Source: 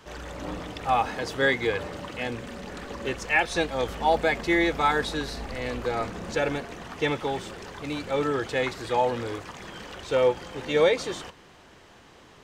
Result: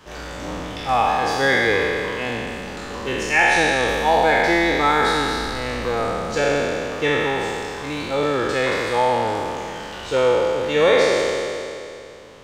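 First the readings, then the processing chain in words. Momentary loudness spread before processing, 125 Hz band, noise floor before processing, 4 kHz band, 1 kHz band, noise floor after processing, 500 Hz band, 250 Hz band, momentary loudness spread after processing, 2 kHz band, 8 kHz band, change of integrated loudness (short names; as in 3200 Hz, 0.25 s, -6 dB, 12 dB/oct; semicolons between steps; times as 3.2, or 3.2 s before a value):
15 LU, +5.0 dB, -52 dBFS, +8.0 dB, +7.5 dB, -35 dBFS, +7.0 dB, +5.0 dB, 14 LU, +8.5 dB, +9.0 dB, +7.0 dB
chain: spectral trails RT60 2.62 s; gain +2 dB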